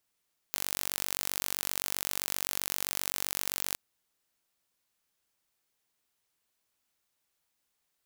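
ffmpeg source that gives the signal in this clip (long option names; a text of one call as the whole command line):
ffmpeg -f lavfi -i "aevalsrc='0.562*eq(mod(n,925),0)':duration=3.22:sample_rate=44100" out.wav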